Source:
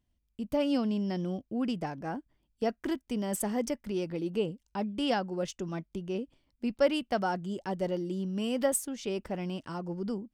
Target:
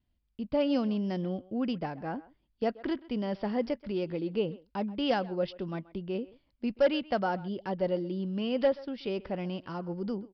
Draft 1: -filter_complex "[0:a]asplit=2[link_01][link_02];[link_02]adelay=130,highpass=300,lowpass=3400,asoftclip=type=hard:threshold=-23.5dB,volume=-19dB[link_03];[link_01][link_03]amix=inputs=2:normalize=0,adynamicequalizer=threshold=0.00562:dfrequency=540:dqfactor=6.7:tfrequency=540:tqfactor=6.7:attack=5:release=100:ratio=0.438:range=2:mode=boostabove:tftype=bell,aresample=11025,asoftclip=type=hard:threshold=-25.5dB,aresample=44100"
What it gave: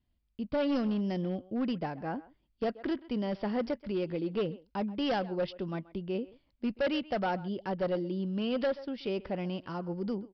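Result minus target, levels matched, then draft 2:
hard clipping: distortion +10 dB
-filter_complex "[0:a]asplit=2[link_01][link_02];[link_02]adelay=130,highpass=300,lowpass=3400,asoftclip=type=hard:threshold=-23.5dB,volume=-19dB[link_03];[link_01][link_03]amix=inputs=2:normalize=0,adynamicequalizer=threshold=0.00562:dfrequency=540:dqfactor=6.7:tfrequency=540:tqfactor=6.7:attack=5:release=100:ratio=0.438:range=2:mode=boostabove:tftype=bell,aresample=11025,asoftclip=type=hard:threshold=-18dB,aresample=44100"

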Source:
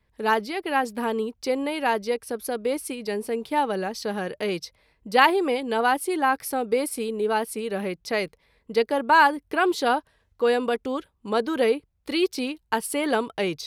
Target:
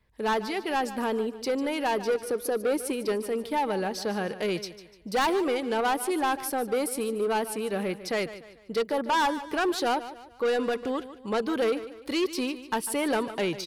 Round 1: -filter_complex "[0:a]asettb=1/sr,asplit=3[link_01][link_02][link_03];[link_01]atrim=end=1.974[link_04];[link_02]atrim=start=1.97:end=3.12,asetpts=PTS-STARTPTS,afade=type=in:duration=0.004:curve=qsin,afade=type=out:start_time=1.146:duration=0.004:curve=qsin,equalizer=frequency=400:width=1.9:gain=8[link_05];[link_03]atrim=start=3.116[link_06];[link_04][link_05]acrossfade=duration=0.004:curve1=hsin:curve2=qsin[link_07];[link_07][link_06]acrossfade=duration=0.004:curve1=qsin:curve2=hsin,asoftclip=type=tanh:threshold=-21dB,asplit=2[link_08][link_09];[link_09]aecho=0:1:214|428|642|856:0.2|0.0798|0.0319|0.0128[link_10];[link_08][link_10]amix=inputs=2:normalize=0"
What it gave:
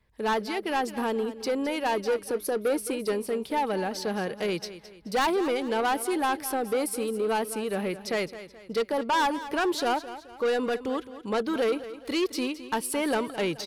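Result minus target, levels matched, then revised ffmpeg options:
echo 66 ms late
-filter_complex "[0:a]asettb=1/sr,asplit=3[link_01][link_02][link_03];[link_01]atrim=end=1.974[link_04];[link_02]atrim=start=1.97:end=3.12,asetpts=PTS-STARTPTS,afade=type=in:duration=0.004:curve=qsin,afade=type=out:start_time=1.146:duration=0.004:curve=qsin,equalizer=frequency=400:width=1.9:gain=8[link_05];[link_03]atrim=start=3.116[link_06];[link_04][link_05]acrossfade=duration=0.004:curve1=hsin:curve2=qsin[link_07];[link_07][link_06]acrossfade=duration=0.004:curve1=qsin:curve2=hsin,asoftclip=type=tanh:threshold=-21dB,asplit=2[link_08][link_09];[link_09]aecho=0:1:148|296|444|592:0.2|0.0798|0.0319|0.0128[link_10];[link_08][link_10]amix=inputs=2:normalize=0"

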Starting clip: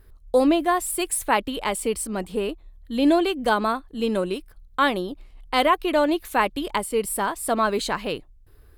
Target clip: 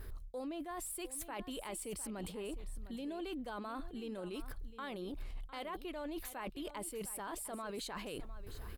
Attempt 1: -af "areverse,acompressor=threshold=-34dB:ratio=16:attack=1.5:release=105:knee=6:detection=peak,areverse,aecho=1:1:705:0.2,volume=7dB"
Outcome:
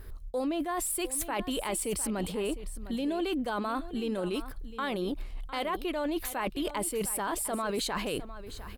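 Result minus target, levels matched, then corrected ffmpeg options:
downward compressor: peak gain reduction −11.5 dB
-af "areverse,acompressor=threshold=-46dB:ratio=16:attack=1.5:release=105:knee=6:detection=peak,areverse,aecho=1:1:705:0.2,volume=7dB"

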